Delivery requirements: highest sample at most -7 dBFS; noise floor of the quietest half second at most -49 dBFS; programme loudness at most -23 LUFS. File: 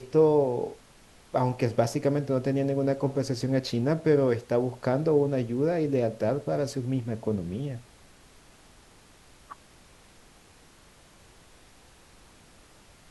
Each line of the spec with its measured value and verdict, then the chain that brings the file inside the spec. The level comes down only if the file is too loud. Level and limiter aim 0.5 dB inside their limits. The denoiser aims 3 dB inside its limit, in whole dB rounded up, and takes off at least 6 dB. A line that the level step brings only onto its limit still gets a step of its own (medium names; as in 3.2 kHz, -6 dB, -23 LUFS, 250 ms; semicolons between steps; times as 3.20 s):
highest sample -10.0 dBFS: pass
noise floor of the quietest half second -55 dBFS: pass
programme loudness -27.0 LUFS: pass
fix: none needed